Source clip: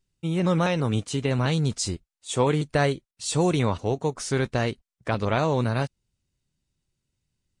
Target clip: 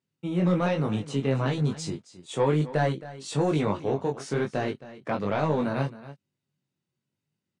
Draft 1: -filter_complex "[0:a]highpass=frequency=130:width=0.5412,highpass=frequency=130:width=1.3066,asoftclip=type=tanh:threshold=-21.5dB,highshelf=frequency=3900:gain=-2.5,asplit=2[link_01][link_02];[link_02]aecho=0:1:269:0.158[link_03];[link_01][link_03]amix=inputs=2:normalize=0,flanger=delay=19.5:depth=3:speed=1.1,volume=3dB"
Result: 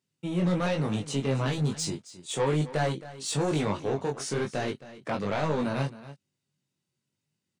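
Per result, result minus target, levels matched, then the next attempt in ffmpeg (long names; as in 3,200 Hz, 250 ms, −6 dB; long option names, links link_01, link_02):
8,000 Hz band +9.0 dB; soft clipping: distortion +7 dB
-filter_complex "[0:a]highpass=frequency=130:width=0.5412,highpass=frequency=130:width=1.3066,asoftclip=type=tanh:threshold=-21.5dB,highshelf=frequency=3900:gain=-12.5,asplit=2[link_01][link_02];[link_02]aecho=0:1:269:0.158[link_03];[link_01][link_03]amix=inputs=2:normalize=0,flanger=delay=19.5:depth=3:speed=1.1,volume=3dB"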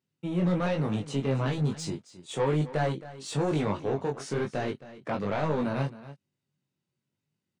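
soft clipping: distortion +7 dB
-filter_complex "[0:a]highpass=frequency=130:width=0.5412,highpass=frequency=130:width=1.3066,asoftclip=type=tanh:threshold=-14.5dB,highshelf=frequency=3900:gain=-12.5,asplit=2[link_01][link_02];[link_02]aecho=0:1:269:0.158[link_03];[link_01][link_03]amix=inputs=2:normalize=0,flanger=delay=19.5:depth=3:speed=1.1,volume=3dB"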